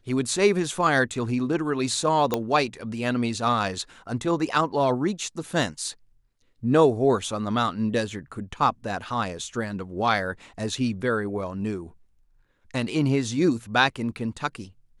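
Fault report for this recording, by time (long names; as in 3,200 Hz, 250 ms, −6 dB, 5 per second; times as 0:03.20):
0:02.34: click −9 dBFS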